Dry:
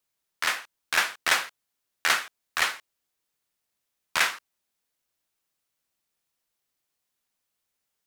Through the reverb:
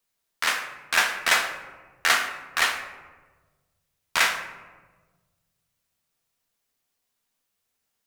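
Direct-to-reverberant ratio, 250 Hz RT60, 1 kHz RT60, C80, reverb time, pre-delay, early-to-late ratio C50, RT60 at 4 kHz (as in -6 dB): 3.5 dB, 1.9 s, 1.2 s, 10.0 dB, 1.4 s, 4 ms, 8.0 dB, 0.65 s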